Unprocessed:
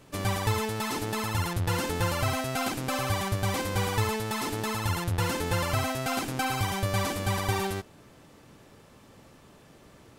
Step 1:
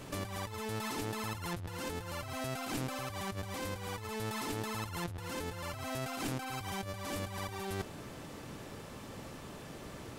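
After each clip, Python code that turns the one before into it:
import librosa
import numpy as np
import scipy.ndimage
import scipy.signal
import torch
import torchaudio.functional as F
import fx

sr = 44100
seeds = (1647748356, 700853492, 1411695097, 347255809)

y = fx.over_compress(x, sr, threshold_db=-38.0, ratio=-1.0)
y = y * librosa.db_to_amplitude(-1.5)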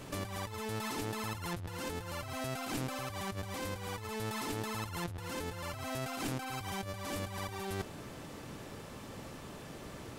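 y = x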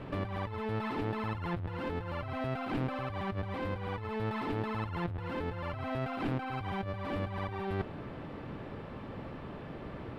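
y = fx.air_absorb(x, sr, metres=440.0)
y = y * librosa.db_to_amplitude(5.0)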